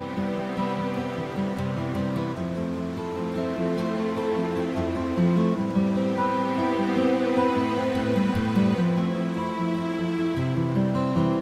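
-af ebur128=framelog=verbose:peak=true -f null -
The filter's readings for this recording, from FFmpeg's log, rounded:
Integrated loudness:
  I:         -25.5 LUFS
  Threshold: -35.5 LUFS
Loudness range:
  LRA:         4.8 LU
  Threshold: -45.2 LUFS
  LRA low:   -28.5 LUFS
  LRA high:  -23.6 LUFS
True peak:
  Peak:      -10.1 dBFS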